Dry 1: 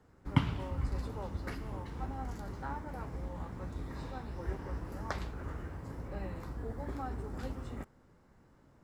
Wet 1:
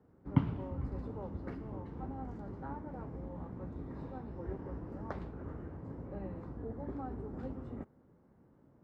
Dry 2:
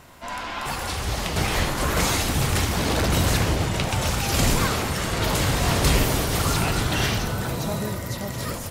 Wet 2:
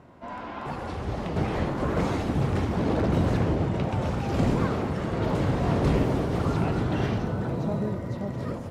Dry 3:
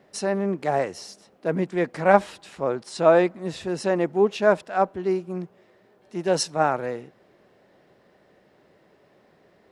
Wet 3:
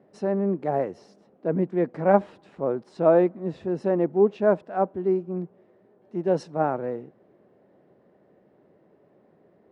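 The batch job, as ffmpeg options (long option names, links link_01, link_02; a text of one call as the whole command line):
ffmpeg -i in.wav -af "bandpass=frequency=260:width_type=q:width=0.55:csg=0,volume=1.5dB" out.wav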